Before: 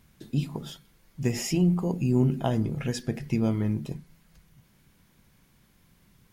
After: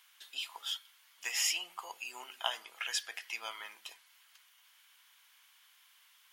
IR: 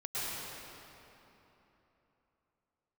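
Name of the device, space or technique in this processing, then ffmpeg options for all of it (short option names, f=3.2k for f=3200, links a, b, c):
headphones lying on a table: -af "highpass=f=1k:w=0.5412,highpass=f=1k:w=1.3066,equalizer=f=3.1k:t=o:w=0.38:g=8.5,volume=2dB"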